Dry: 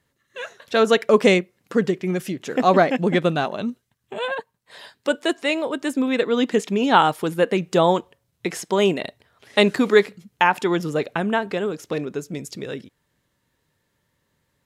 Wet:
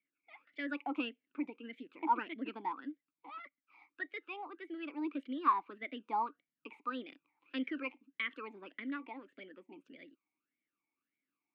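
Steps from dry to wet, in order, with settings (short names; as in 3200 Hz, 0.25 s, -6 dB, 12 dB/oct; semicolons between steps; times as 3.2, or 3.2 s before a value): three-band isolator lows -13 dB, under 380 Hz, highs -20 dB, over 2200 Hz; varispeed +27%; vowel sweep i-u 1.7 Hz; gain -2.5 dB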